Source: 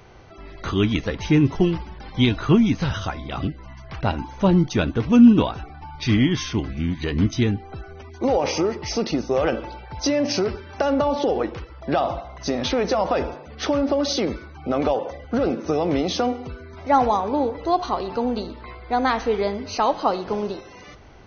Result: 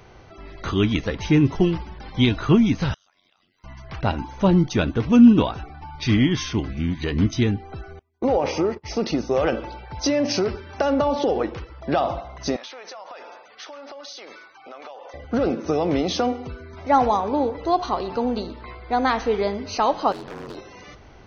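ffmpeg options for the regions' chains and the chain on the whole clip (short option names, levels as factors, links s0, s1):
-filter_complex "[0:a]asettb=1/sr,asplit=3[s0][s1][s2];[s0]atrim=end=2.944[s3];[s1]atrim=start=2.94:end=3.64,asetpts=PTS-STARTPTS,afade=t=in:d=0.004:c=qsin,afade=t=out:st=0.696:d=0.004:c=qsin,aderivative,acompressor=threshold=0.00158:ratio=16:attack=3.2:release=140:knee=1:detection=peak,aeval=exprs='val(0)*sin(2*PI*46*n/s)':c=same[s4];[s2]atrim=start=3.636[s5];[s3][s4]acrossfade=d=0.004:c1=hsin:c2=qsin[s6];[s6][s5]acrossfade=d=0.004:c1=qsin:c2=hsin,asettb=1/sr,asplit=3[s7][s8][s9];[s7]atrim=end=7.994[s10];[s8]atrim=start=7.99:end=9.03,asetpts=PTS-STARTPTS,afade=t=in:d=0.004:c=qsin,afade=t=out:st=1.036:d=0.004:c=qsin,agate=range=0.0251:threshold=0.0282:ratio=16:release=100:detection=peak,highshelf=f=4100:g=-10[s11];[s9]atrim=start=9.026[s12];[s10][s11]acrossfade=d=0.004:c1=hsin:c2=qsin[s13];[s13][s12]acrossfade=d=0.004:c1=qsin:c2=hsin,asettb=1/sr,asplit=3[s14][s15][s16];[s14]atrim=end=12.564[s17];[s15]atrim=start=12.56:end=15.14,asetpts=PTS-STARTPTS,afade=t=in:d=0.004:c=qsin,afade=t=out:st=2.576:d=0.004:c=qsin,highpass=830,acompressor=threshold=0.0158:ratio=6:attack=3.2:release=140:knee=1:detection=peak[s18];[s16]atrim=start=15.136[s19];[s17][s18]acrossfade=d=0.004:c1=hsin:c2=qsin[s20];[s20][s19]acrossfade=d=0.004:c1=qsin:c2=hsin,asettb=1/sr,asplit=3[s21][s22][s23];[s21]atrim=end=20.124[s24];[s22]atrim=start=20.12:end=20.57,asetpts=PTS-STARTPTS,afade=t=in:d=0.004:c=qsin,afade=t=out:st=0.446:d=0.004:c=qsin,acompressor=threshold=0.0562:ratio=4:attack=3.2:release=140:knee=1:detection=peak,aeval=exprs='val(0)*sin(2*PI*45*n/s)':c=same,aeval=exprs='0.0355*(abs(mod(val(0)/0.0355+3,4)-2)-1)':c=same[s25];[s23]atrim=start=20.566[s26];[s24][s25]acrossfade=d=0.004:c1=hsin:c2=qsin[s27];[s27][s26]acrossfade=d=0.004:c1=qsin:c2=hsin"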